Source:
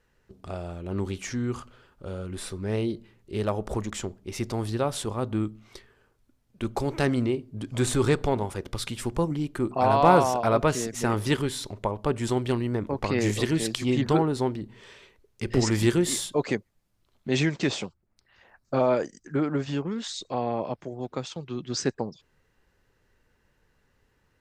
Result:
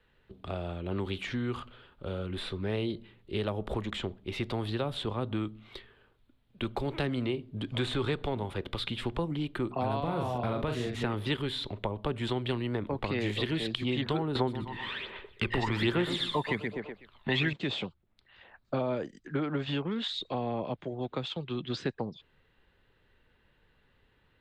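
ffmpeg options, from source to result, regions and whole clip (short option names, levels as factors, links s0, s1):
-filter_complex "[0:a]asettb=1/sr,asplit=3[s0][s1][s2];[s0]atrim=end=9.994[s3];[s1]atrim=start=9.99:end=11.03,asetpts=PTS-STARTPTS,afade=t=in:d=0.004:c=qsin,afade=t=out:st=1.036:d=0.004:c=qsin,acompressor=threshold=0.0794:ratio=4:attack=3.2:release=140:knee=1:detection=peak,equalizer=f=91:t=o:w=1.5:g=8,asplit=2[s4][s5];[s5]adelay=41,volume=0.531[s6];[s4][s6]amix=inputs=2:normalize=0,atrim=end_sample=45864[s7];[s2]atrim=start=11.026[s8];[s3][s7]acrossfade=d=0.004:c1=hsin:c2=qsin[s9];[s9][s8]acrossfade=d=0.004:c1=qsin:c2=hsin,asettb=1/sr,asplit=3[s10][s11][s12];[s10]atrim=end=14.354[s13];[s11]atrim=start=14.35:end=17.53,asetpts=PTS-STARTPTS,afade=t=in:d=0.004:c=qsin,afade=t=out:st=3.176:d=0.004:c=qsin,equalizer=f=1200:t=o:w=3:g=12.5,aecho=1:1:124|248|372|496:0.316|0.108|0.0366|0.0124,atrim=end_sample=140238,aphaser=in_gain=1:out_gain=1:delay=1.1:decay=0.57:speed=1.2:type=sinusoidal[s14];[s12]atrim=start=17.526[s15];[s13][s14]acrossfade=d=0.004:c1=hsin:c2=qsin[s16];[s16][s15]acrossfade=d=0.004:c1=qsin:c2=hsin,acrossover=split=210|430|7100[s17][s18][s19][s20];[s17]acompressor=threshold=0.0178:ratio=4[s21];[s18]acompressor=threshold=0.0141:ratio=4[s22];[s19]acompressor=threshold=0.0178:ratio=4[s23];[s20]acompressor=threshold=0.00251:ratio=4[s24];[s21][s22][s23][s24]amix=inputs=4:normalize=0,highshelf=f=4600:t=q:w=3:g=-9"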